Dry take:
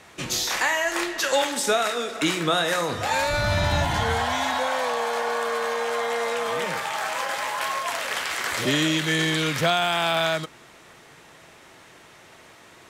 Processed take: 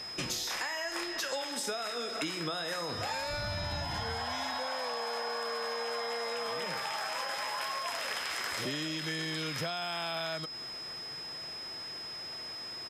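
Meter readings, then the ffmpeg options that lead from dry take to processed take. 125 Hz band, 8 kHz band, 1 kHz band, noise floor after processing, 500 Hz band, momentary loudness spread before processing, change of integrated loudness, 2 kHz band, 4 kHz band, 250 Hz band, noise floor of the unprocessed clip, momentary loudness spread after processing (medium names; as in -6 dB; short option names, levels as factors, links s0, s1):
-13.0 dB, -10.5 dB, -11.5 dB, -42 dBFS, -12.0 dB, 5 LU, -11.0 dB, -11.5 dB, -7.5 dB, -12.5 dB, -50 dBFS, 6 LU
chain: -af "acompressor=threshold=0.0224:ratio=12,aeval=exprs='val(0)+0.01*sin(2*PI*5100*n/s)':c=same,aresample=32000,aresample=44100"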